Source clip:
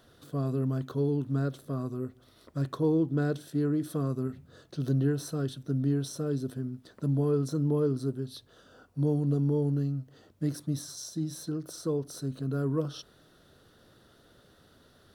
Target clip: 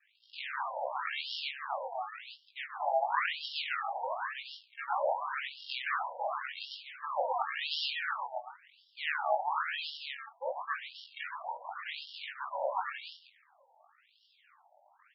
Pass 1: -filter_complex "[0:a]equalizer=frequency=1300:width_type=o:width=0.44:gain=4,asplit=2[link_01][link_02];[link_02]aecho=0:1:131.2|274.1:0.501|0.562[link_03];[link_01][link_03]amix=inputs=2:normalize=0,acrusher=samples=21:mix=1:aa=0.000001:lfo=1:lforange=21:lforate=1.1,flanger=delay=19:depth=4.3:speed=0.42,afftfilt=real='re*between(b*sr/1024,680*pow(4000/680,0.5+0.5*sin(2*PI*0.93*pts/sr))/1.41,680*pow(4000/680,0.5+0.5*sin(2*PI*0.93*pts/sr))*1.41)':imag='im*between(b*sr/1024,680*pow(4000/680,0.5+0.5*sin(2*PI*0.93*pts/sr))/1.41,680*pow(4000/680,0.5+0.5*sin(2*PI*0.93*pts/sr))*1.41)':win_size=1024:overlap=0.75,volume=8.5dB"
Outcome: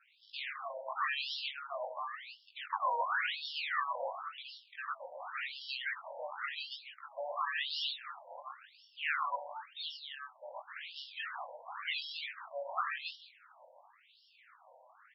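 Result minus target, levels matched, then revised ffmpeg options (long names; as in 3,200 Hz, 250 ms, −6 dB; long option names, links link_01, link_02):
sample-and-hold swept by an LFO: distortion −11 dB
-filter_complex "[0:a]equalizer=frequency=1300:width_type=o:width=0.44:gain=4,asplit=2[link_01][link_02];[link_02]aecho=0:1:131.2|274.1:0.501|0.562[link_03];[link_01][link_03]amix=inputs=2:normalize=0,acrusher=samples=60:mix=1:aa=0.000001:lfo=1:lforange=60:lforate=1.1,flanger=delay=19:depth=4.3:speed=0.42,afftfilt=real='re*between(b*sr/1024,680*pow(4000/680,0.5+0.5*sin(2*PI*0.93*pts/sr))/1.41,680*pow(4000/680,0.5+0.5*sin(2*PI*0.93*pts/sr))*1.41)':imag='im*between(b*sr/1024,680*pow(4000/680,0.5+0.5*sin(2*PI*0.93*pts/sr))/1.41,680*pow(4000/680,0.5+0.5*sin(2*PI*0.93*pts/sr))*1.41)':win_size=1024:overlap=0.75,volume=8.5dB"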